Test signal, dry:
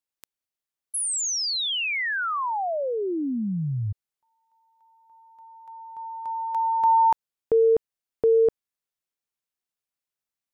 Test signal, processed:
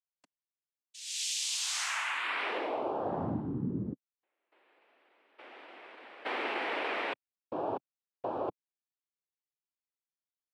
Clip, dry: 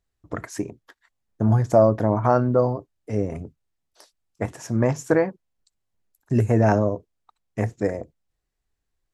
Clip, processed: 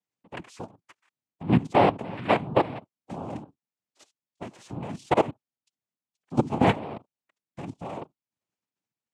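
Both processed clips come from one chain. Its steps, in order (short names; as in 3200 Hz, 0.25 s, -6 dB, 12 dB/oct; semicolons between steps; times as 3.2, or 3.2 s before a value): level quantiser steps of 17 dB; noise vocoder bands 4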